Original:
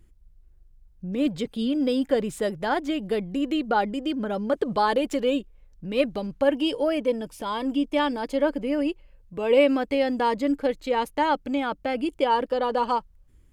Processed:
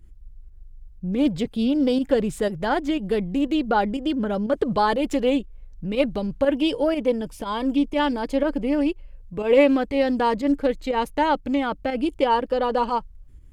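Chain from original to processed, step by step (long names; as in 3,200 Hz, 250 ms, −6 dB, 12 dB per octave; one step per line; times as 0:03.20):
low-shelf EQ 150 Hz +10 dB
fake sidechain pumping 121 BPM, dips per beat 1, −8 dB, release 93 ms
highs frequency-modulated by the lows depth 0.11 ms
level +1.5 dB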